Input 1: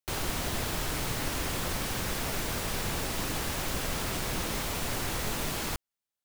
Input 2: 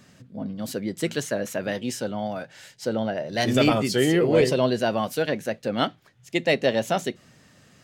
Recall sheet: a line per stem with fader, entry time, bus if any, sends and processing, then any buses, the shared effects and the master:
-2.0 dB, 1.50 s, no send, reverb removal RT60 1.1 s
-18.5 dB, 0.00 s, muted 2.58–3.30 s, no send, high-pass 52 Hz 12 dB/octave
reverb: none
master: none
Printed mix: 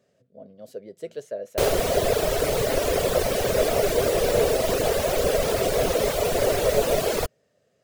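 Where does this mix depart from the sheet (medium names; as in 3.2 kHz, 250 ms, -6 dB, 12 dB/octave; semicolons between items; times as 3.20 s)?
stem 1 -2.0 dB -> +7.0 dB; master: extra high-order bell 520 Hz +15 dB 1 oct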